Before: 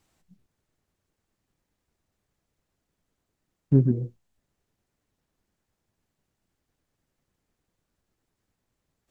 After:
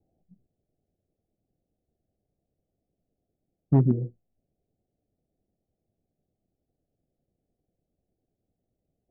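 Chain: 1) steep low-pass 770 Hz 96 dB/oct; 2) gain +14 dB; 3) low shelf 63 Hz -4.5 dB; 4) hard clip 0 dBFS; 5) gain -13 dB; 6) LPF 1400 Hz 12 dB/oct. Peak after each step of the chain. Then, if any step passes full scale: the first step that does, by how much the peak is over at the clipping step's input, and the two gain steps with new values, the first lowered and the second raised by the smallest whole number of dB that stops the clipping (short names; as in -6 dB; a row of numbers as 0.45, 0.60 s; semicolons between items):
-9.0, +5.0, +5.0, 0.0, -13.0, -12.5 dBFS; step 2, 5.0 dB; step 2 +9 dB, step 5 -8 dB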